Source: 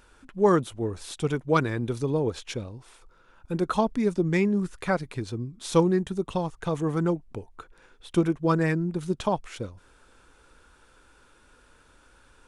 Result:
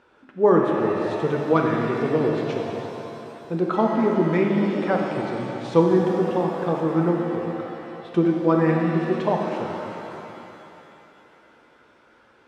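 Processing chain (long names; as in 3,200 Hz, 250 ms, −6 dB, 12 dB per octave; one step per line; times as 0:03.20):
band-pass filter 120–3,600 Hz
parametric band 500 Hz +7 dB 2.8 octaves
reverb with rising layers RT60 3 s, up +7 semitones, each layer −8 dB, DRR 0.5 dB
level −3.5 dB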